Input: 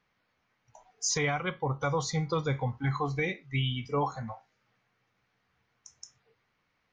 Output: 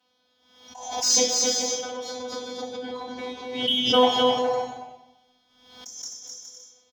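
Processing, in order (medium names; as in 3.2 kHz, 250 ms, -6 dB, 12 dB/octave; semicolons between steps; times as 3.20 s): partial rectifier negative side -3 dB; FFT filter 270 Hz 0 dB, 770 Hz +9 dB, 2.1 kHz -11 dB, 3 kHz +14 dB; 1.20–3.68 s: compression 10:1, threshold -37 dBFS, peak gain reduction 17.5 dB; robot voice 251 Hz; Chebyshev shaper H 7 -27 dB, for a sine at -17.5 dBFS; bouncing-ball echo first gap 260 ms, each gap 0.6×, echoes 5; reverberation RT60 0.90 s, pre-delay 3 ms, DRR -6 dB; swell ahead of each attack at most 67 dB/s; trim -5.5 dB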